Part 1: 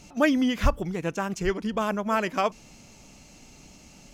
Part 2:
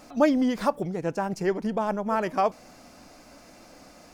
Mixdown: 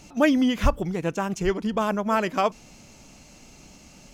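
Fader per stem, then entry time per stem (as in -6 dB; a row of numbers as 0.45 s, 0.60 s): +1.0 dB, -11.0 dB; 0.00 s, 0.00 s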